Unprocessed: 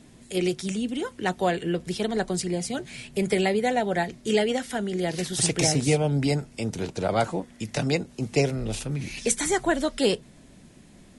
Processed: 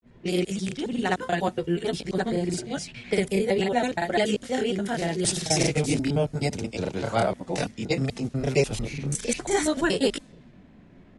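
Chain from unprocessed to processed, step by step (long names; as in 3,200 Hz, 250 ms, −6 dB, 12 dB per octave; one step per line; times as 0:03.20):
slices reordered back to front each 87 ms, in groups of 3
granular cloud 229 ms, grains 14 per second, spray 32 ms, pitch spread up and down by 0 semitones
low-pass that shuts in the quiet parts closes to 1,900 Hz, open at −26.5 dBFS
level +3.5 dB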